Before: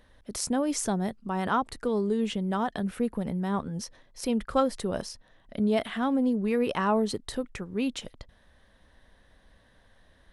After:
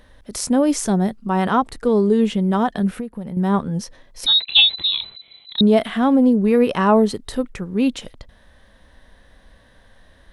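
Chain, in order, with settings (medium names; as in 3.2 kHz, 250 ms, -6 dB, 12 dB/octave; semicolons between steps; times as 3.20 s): harmonic-percussive split harmonic +7 dB; 2.96–3.37 s: compression 8:1, threshold -30 dBFS, peak gain reduction 14 dB; 4.26–5.61 s: frequency inversion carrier 4 kHz; trim +4 dB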